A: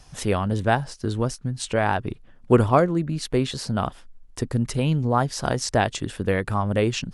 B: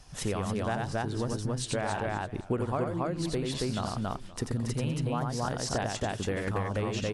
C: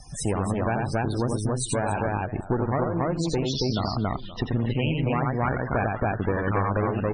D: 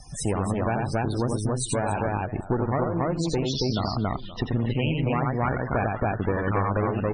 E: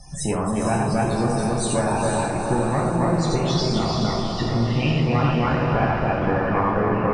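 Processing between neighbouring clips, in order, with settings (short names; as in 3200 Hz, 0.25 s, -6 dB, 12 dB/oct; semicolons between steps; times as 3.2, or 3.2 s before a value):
loudspeakers at several distances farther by 30 m -4 dB, 95 m -2 dB; compressor 6:1, threshold -24 dBFS, peak gain reduction 14 dB; warbling echo 0.521 s, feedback 36%, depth 174 cents, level -19 dB; gain -3.5 dB
low-pass sweep 9500 Hz -> 1400 Hz, 2.88–5.88; one-sided clip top -38 dBFS, bottom -21 dBFS; loudest bins only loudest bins 64; gain +8 dB
notch 1600 Hz, Q 26
diffused feedback echo 0.465 s, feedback 52%, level -4 dB; non-linear reverb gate 0.15 s falling, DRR -0.5 dB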